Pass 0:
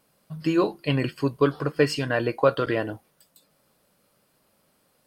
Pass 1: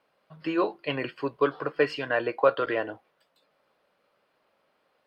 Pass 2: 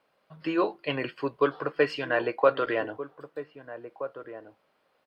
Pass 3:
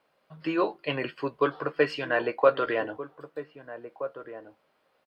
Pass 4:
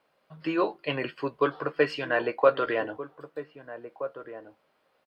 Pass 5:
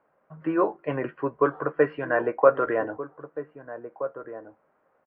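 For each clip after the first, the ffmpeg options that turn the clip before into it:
-filter_complex "[0:a]acrossover=split=360 3700:gain=0.178 1 0.0708[a][b][c];[a][b][c]amix=inputs=3:normalize=0"
-filter_complex "[0:a]asplit=2[a][b];[b]adelay=1574,volume=-12dB,highshelf=f=4k:g=-35.4[c];[a][c]amix=inputs=2:normalize=0"
-filter_complex "[0:a]asplit=2[a][b];[b]adelay=13,volume=-12.5dB[c];[a][c]amix=inputs=2:normalize=0"
-af anull
-af "lowpass=f=1.7k:w=0.5412,lowpass=f=1.7k:w=1.3066,volume=3dB"

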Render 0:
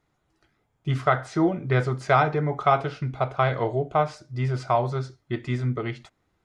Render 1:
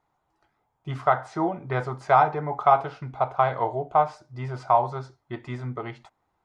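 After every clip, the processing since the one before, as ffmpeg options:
-af "equalizer=f=880:t=o:w=1:g=14.5,volume=-7.5dB"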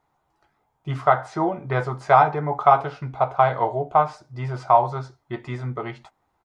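-filter_complex "[0:a]asplit=2[a][b];[b]adelay=14,volume=-11dB[c];[a][c]amix=inputs=2:normalize=0,volume=3dB"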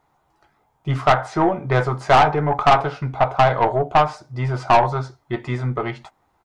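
-af "aeval=exprs='(tanh(5.62*val(0)+0.35)-tanh(0.35))/5.62':c=same,volume=7dB"

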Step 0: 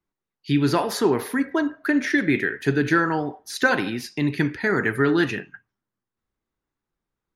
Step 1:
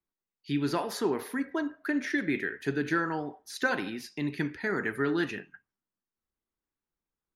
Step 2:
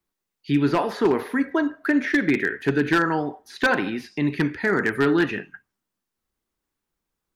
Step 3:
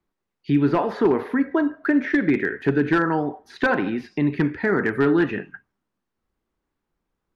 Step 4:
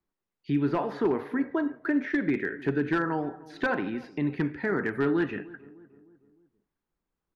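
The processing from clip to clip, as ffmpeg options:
-af "equalizer=f=120:t=o:w=0.22:g=-12.5,volume=-8.5dB"
-filter_complex "[0:a]acrossover=split=3400[a][b];[b]acompressor=threshold=-59dB:ratio=4:attack=1:release=60[c];[a][c]amix=inputs=2:normalize=0,aeval=exprs='0.1*(abs(mod(val(0)/0.1+3,4)-2)-1)':c=same,volume=9dB"
-filter_complex "[0:a]lowpass=f=1.4k:p=1,asplit=2[a][b];[b]acompressor=threshold=-31dB:ratio=6,volume=-0.5dB[c];[a][c]amix=inputs=2:normalize=0"
-filter_complex "[0:a]asplit=2[a][b];[b]adelay=305,lowpass=f=1.1k:p=1,volume=-19.5dB,asplit=2[c][d];[d]adelay=305,lowpass=f=1.1k:p=1,volume=0.51,asplit=2[e][f];[f]adelay=305,lowpass=f=1.1k:p=1,volume=0.51,asplit=2[g][h];[h]adelay=305,lowpass=f=1.1k:p=1,volume=0.51[i];[a][c][e][g][i]amix=inputs=5:normalize=0,volume=-7dB"

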